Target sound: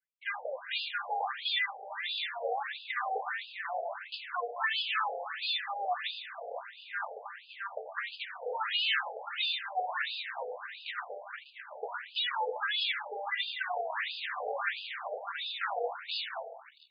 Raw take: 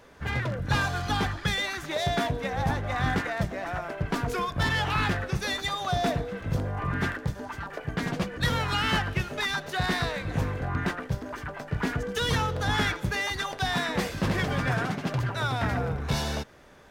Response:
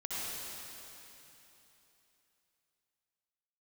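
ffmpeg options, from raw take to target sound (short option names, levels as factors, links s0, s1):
-filter_complex "[0:a]bandreject=f=64.48:t=h:w=4,bandreject=f=128.96:t=h:w=4,bandreject=f=193.44:t=h:w=4,bandreject=f=257.92:t=h:w=4,bandreject=f=322.4:t=h:w=4,bandreject=f=386.88:t=h:w=4,bandreject=f=451.36:t=h:w=4,bandreject=f=515.84:t=h:w=4,bandreject=f=580.32:t=h:w=4,bandreject=f=644.8:t=h:w=4,bandreject=f=709.28:t=h:w=4,bandreject=f=773.76:t=h:w=4,bandreject=f=838.24:t=h:w=4,bandreject=f=902.72:t=h:w=4,bandreject=f=967.2:t=h:w=4,bandreject=f=1031.68:t=h:w=4,bandreject=f=1096.16:t=h:w=4,bandreject=f=1160.64:t=h:w=4,bandreject=f=1225.12:t=h:w=4,bandreject=f=1289.6:t=h:w=4,bandreject=f=1354.08:t=h:w=4,bandreject=f=1418.56:t=h:w=4,bandreject=f=1483.04:t=h:w=4,bandreject=f=1547.52:t=h:w=4,bandreject=f=1612:t=h:w=4,bandreject=f=1676.48:t=h:w=4,bandreject=f=1740.96:t=h:w=4,bandreject=f=1805.44:t=h:w=4,asplit=2[s0][s1];[1:a]atrim=start_sample=2205,highshelf=f=2100:g=9[s2];[s1][s2]afir=irnorm=-1:irlink=0,volume=0.224[s3];[s0][s3]amix=inputs=2:normalize=0,anlmdn=0.631,afftfilt=real='re*between(b*sr/1024,580*pow(3600/580,0.5+0.5*sin(2*PI*1.5*pts/sr))/1.41,580*pow(3600/580,0.5+0.5*sin(2*PI*1.5*pts/sr))*1.41)':imag='im*between(b*sr/1024,580*pow(3600/580,0.5+0.5*sin(2*PI*1.5*pts/sr))/1.41,580*pow(3600/580,0.5+0.5*sin(2*PI*1.5*pts/sr))*1.41)':win_size=1024:overlap=0.75"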